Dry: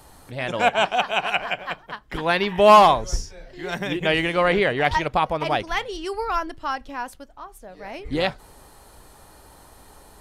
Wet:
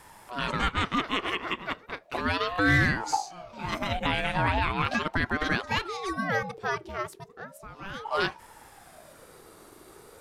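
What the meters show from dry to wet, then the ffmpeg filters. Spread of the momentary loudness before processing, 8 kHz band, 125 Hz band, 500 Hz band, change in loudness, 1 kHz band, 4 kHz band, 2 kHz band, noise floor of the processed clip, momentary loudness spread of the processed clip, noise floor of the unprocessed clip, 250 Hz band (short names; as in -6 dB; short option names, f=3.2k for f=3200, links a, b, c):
17 LU, -4.5 dB, +0.5 dB, -12.5 dB, -7.5 dB, -9.5 dB, -5.5 dB, -2.5 dB, -53 dBFS, 14 LU, -50 dBFS, -3.0 dB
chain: -af "alimiter=limit=-13dB:level=0:latency=1:release=149,aeval=exprs='val(0)*sin(2*PI*640*n/s+640*0.45/0.36*sin(2*PI*0.36*n/s))':c=same"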